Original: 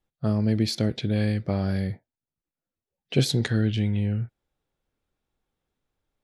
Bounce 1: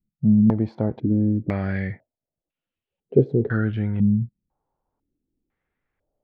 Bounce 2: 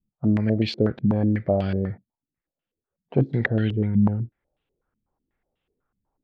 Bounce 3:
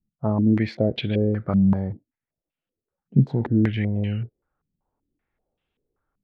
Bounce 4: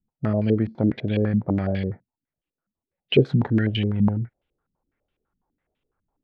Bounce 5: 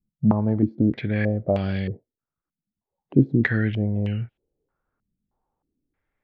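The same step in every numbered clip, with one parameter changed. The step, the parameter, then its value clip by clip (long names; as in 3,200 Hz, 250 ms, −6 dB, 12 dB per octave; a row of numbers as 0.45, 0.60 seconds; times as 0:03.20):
low-pass on a step sequencer, speed: 2, 8.1, 5.2, 12, 3.2 Hertz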